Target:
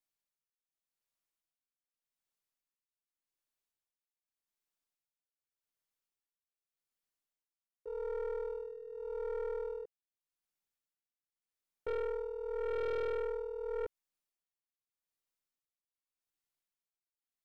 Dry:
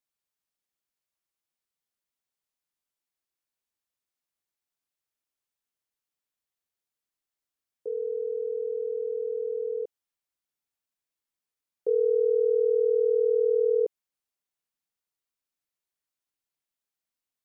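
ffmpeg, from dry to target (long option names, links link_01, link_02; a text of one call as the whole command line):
ffmpeg -i in.wav -af "aeval=exprs='if(lt(val(0),0),0.708*val(0),val(0))':channel_layout=same,tremolo=f=0.85:d=0.8,aeval=exprs='(tanh(44.7*val(0)+0.4)-tanh(0.4))/44.7':channel_layout=same" out.wav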